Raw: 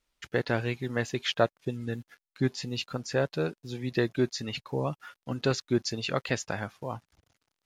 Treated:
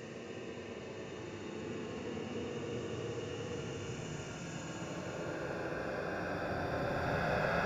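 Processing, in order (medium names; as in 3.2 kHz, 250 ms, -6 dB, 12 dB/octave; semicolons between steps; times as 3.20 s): reverse spectral sustain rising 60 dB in 2.38 s; peak limiter -14.5 dBFS, peak gain reduction 8.5 dB; inverted gate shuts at -15 dBFS, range -29 dB; filtered feedback delay 373 ms, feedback 76%, low-pass 3.9 kHz, level -6 dB; Paulstretch 45×, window 0.05 s, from 6.31 s; trim +1 dB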